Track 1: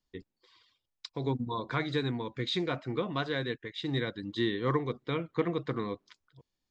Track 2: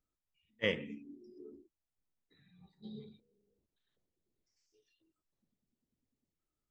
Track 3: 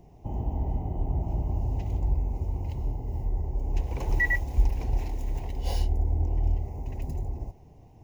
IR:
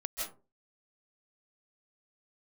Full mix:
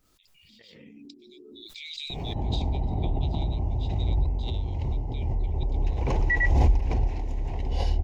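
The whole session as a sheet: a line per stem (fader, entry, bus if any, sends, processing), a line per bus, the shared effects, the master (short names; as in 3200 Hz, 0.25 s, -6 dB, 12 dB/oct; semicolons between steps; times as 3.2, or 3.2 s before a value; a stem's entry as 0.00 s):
-14.0 dB, 0.05 s, no send, steep high-pass 2300 Hz 96 dB/oct; high shelf 3100 Hz +9.5 dB
-5.5 dB, 0.00 s, no send, negative-ratio compressor -48 dBFS, ratio -0.5
0.0 dB, 2.10 s, no send, LPF 4800 Hz 12 dB/oct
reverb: off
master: backwards sustainer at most 22 dB/s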